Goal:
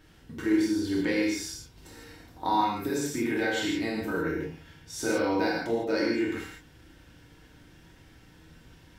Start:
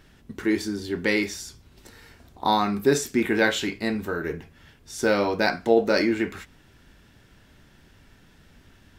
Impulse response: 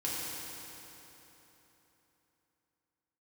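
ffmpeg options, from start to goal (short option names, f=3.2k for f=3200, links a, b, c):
-filter_complex "[0:a]acompressor=threshold=-27dB:ratio=3[a];[1:a]atrim=start_sample=2205,afade=t=out:st=0.22:d=0.01,atrim=end_sample=10143[b];[a][b]afir=irnorm=-1:irlink=0,volume=-3dB"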